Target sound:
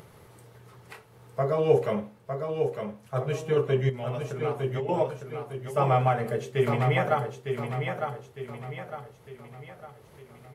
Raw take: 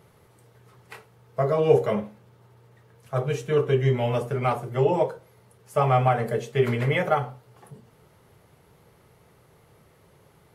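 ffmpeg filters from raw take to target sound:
ffmpeg -i in.wav -filter_complex "[0:a]asettb=1/sr,asplit=3[link_01][link_02][link_03];[link_01]atrim=end=3.894[link_04];[link_02]atrim=start=3.89:end=4.89,asetpts=PTS-STARTPTS,afade=type=in:duration=0.004:curve=qsin,afade=type=out:start_time=0.996:duration=0.004:curve=qsin,acompressor=threshold=-28dB:ratio=6[link_05];[link_03]atrim=start=4.886[link_06];[link_04][link_05]acrossfade=duration=0.004:curve1=hsin:curve2=qsin[link_07];[link_07][link_06]acrossfade=duration=0.004:curve1=qsin:curve2=hsin,asplit=2[link_08][link_09];[link_09]aecho=0:1:906|1812|2718|3624|4530:0.501|0.216|0.0927|0.0398|0.0171[link_10];[link_08][link_10]amix=inputs=2:normalize=0,acompressor=mode=upward:threshold=-40dB:ratio=2.5,volume=-3dB" out.wav

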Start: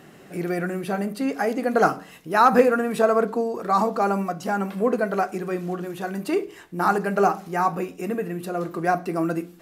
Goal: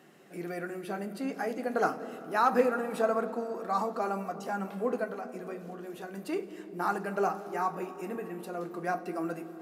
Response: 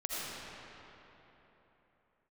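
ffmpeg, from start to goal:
-filter_complex "[0:a]highpass=200,asettb=1/sr,asplit=3[link_01][link_02][link_03];[link_01]atrim=end=5.044[link_04];[link_02]atrim=start=5.04:end=6.14,asetpts=PTS-STARTPTS,afade=type=in:duration=0.004:curve=qsin,afade=type=out:start_time=1.096:duration=0.004:curve=qsin,acompressor=threshold=-28dB:ratio=6[link_05];[link_03]atrim=start=6.136[link_06];[link_04][link_05]acrossfade=duration=0.004:curve1=hsin:curve2=qsin[link_07];[link_07][link_06]acrossfade=duration=0.004:curve1=qsin:curve2=hsin,flanger=delay=5.5:depth=6.7:regen=-62:speed=0.3:shape=sinusoidal,asplit=2[link_08][link_09];[1:a]atrim=start_sample=2205,lowshelf=frequency=410:gain=10.5,adelay=94[link_10];[link_09][link_10]afir=irnorm=-1:irlink=0,volume=-20.5dB[link_11];[link_08][link_11]amix=inputs=2:normalize=0,volume=-5dB"

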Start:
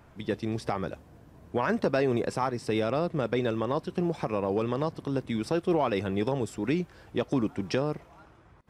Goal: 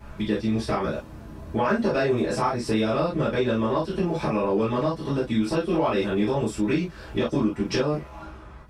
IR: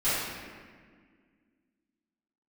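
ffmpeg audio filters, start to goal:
-filter_complex "[1:a]atrim=start_sample=2205,atrim=end_sample=6174,asetrate=88200,aresample=44100[link_01];[0:a][link_01]afir=irnorm=-1:irlink=0,acompressor=threshold=-33dB:ratio=2,volume=7dB"

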